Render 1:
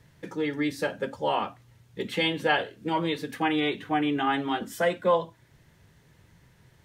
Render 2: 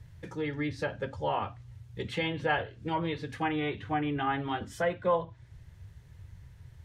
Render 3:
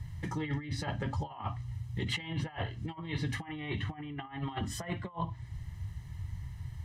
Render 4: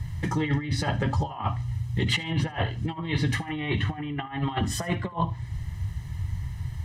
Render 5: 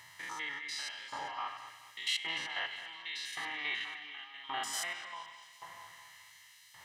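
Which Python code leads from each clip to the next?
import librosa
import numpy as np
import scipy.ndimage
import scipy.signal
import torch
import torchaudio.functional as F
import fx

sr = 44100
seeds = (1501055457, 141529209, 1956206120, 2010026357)

y1 = fx.env_lowpass_down(x, sr, base_hz=2400.0, full_db=-22.0)
y1 = fx.low_shelf_res(y1, sr, hz=140.0, db=14.0, q=1.5)
y1 = y1 * librosa.db_to_amplitude(-3.5)
y2 = y1 + 0.72 * np.pad(y1, (int(1.0 * sr / 1000.0), 0))[:len(y1)]
y2 = fx.over_compress(y2, sr, threshold_db=-35.0, ratio=-0.5)
y3 = fx.echo_feedback(y2, sr, ms=75, feedback_pct=31, wet_db=-21.5)
y3 = y3 * librosa.db_to_amplitude(9.0)
y4 = fx.spec_steps(y3, sr, hold_ms=100)
y4 = fx.echo_wet_lowpass(y4, sr, ms=214, feedback_pct=64, hz=3600.0, wet_db=-9.0)
y4 = fx.filter_lfo_highpass(y4, sr, shape='saw_up', hz=0.89, low_hz=900.0, high_hz=3400.0, q=0.75)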